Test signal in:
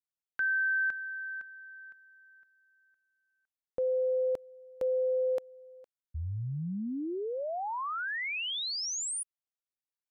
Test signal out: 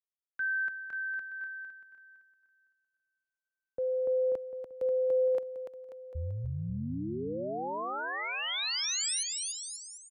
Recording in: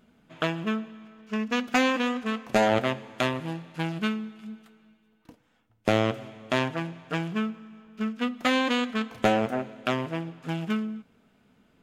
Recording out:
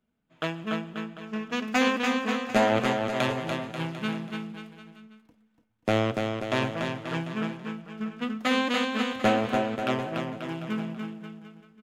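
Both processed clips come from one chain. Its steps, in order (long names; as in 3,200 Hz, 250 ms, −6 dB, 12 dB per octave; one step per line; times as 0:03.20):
bouncing-ball delay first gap 290 ms, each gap 0.85×, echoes 5
multiband upward and downward expander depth 40%
level −2.5 dB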